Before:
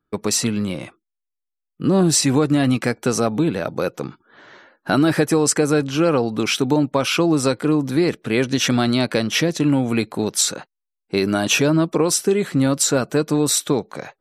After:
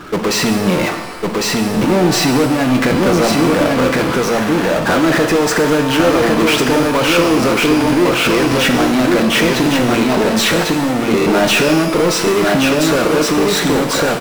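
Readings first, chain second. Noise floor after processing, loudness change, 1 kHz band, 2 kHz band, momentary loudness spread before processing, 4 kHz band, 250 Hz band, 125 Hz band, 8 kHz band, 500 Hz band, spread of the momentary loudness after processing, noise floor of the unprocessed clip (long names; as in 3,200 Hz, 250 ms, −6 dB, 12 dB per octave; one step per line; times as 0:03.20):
−19 dBFS, +5.5 dB, +10.5 dB, +10.0 dB, 7 LU, +7.0 dB, +5.5 dB, +2.5 dB, +0.5 dB, +7.0 dB, 3 LU, −82 dBFS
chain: camcorder AGC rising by 5.7 dB per second
low-pass filter 2,400 Hz 12 dB per octave
low-shelf EQ 180 Hz −12 dB
downward compressor, threshold −21 dBFS, peak gain reduction 7 dB
on a send: single-tap delay 1,104 ms −4 dB
on the sum: power curve on the samples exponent 0.35
buffer that repeats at 0:01.72/0:11.17, samples 1,024, times 3
reverb with rising layers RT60 1.1 s, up +12 semitones, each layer −8 dB, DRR 5.5 dB
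level −1 dB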